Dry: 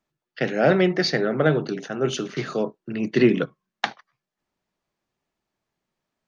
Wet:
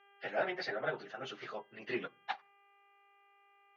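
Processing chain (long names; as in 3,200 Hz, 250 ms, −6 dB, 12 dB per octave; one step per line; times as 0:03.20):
dynamic equaliser 830 Hz, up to +6 dB, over −41 dBFS, Q 3.9
hum with harmonics 400 Hz, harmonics 8, −54 dBFS −4 dB per octave
time stretch by phase vocoder 0.6×
three-way crossover with the lows and the highs turned down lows −17 dB, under 530 Hz, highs −19 dB, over 4,200 Hz
on a send: convolution reverb RT60 0.40 s, pre-delay 4 ms, DRR 23.5 dB
on the sum: level −7.5 dB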